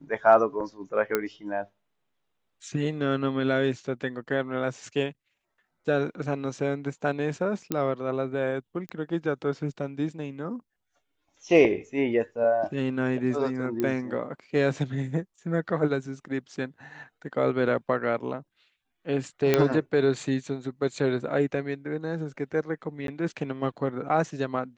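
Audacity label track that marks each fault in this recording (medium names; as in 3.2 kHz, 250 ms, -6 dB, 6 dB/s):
1.150000	1.150000	pop -10 dBFS
7.720000	7.720000	pop -12 dBFS
8.890000	8.890000	pop -22 dBFS
13.800000	13.800000	pop -16 dBFS
19.540000	19.540000	pop -7 dBFS
23.070000	23.080000	dropout 12 ms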